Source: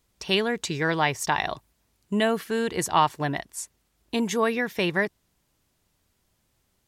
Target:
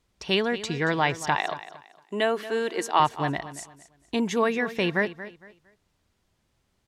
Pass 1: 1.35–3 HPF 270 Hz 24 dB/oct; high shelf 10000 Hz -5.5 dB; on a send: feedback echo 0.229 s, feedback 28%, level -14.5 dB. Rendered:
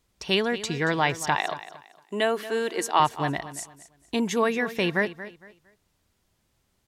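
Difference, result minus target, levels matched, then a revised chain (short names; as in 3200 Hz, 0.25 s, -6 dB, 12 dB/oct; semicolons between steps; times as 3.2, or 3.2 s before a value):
8000 Hz band +3.5 dB
1.35–3 HPF 270 Hz 24 dB/oct; high shelf 10000 Hz -17 dB; on a send: feedback echo 0.229 s, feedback 28%, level -14.5 dB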